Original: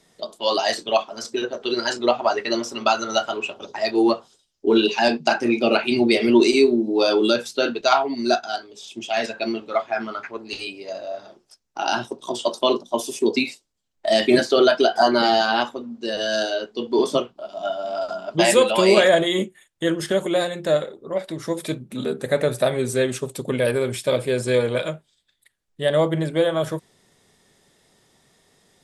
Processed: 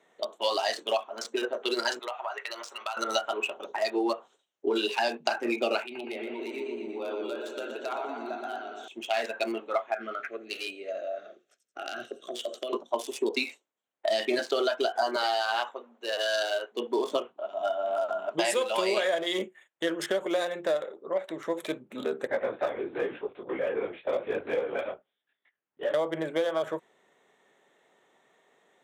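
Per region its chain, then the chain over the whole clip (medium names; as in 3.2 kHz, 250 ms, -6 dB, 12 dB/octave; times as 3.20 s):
1.99–2.97 s: high-pass 930 Hz + compression 4:1, threshold -30 dBFS
5.83–8.88 s: compression 5:1, threshold -31 dBFS + treble shelf 9.6 kHz -5.5 dB + modulated delay 119 ms, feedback 69%, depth 77 cents, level -5 dB
9.94–12.73 s: feedback echo behind a high-pass 86 ms, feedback 32%, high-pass 5.5 kHz, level -4 dB + compression 12:1, threshold -26 dBFS + Butterworth band-stop 930 Hz, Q 1.8
15.16–16.72 s: high-pass 540 Hz + band-stop 4.9 kHz, Q 25
22.27–25.94 s: distance through air 180 m + LPC vocoder at 8 kHz whisper + detune thickener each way 33 cents
whole clip: local Wiener filter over 9 samples; high-pass 430 Hz 12 dB/octave; compression, threshold -24 dBFS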